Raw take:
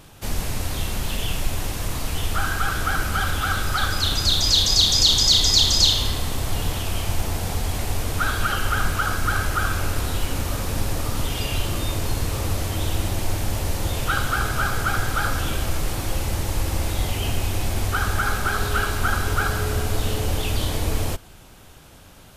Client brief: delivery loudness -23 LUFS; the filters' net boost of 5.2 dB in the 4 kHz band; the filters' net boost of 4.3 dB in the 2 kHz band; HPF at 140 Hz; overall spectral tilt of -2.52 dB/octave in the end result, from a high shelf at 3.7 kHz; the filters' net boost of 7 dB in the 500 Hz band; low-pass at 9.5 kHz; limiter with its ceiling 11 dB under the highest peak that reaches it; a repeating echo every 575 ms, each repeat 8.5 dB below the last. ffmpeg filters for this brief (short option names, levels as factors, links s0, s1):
-af "highpass=140,lowpass=9500,equalizer=f=500:t=o:g=8.5,equalizer=f=2000:t=o:g=5,highshelf=f=3700:g=-3.5,equalizer=f=4000:t=o:g=7,alimiter=limit=0.335:level=0:latency=1,aecho=1:1:575|1150|1725|2300:0.376|0.143|0.0543|0.0206,volume=0.794"